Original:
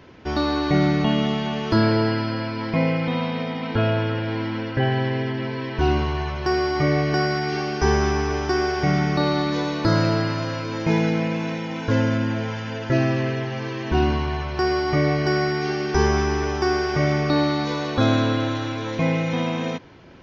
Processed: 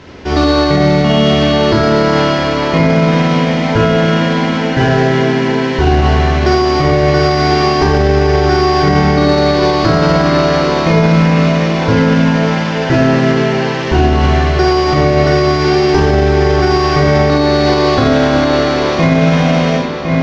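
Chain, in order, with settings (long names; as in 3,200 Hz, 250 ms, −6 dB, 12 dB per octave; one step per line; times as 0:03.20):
variable-slope delta modulation 32 kbit/s
in parallel at −8.5 dB: soft clipping −24 dBFS, distortion −9 dB
on the sum: feedback echo with a low-pass in the loop 1,058 ms, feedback 42%, low-pass 4,400 Hz, level −6 dB
convolution reverb RT60 0.65 s, pre-delay 40 ms, DRR −1 dB
boost into a limiter +8.5 dB
level −1 dB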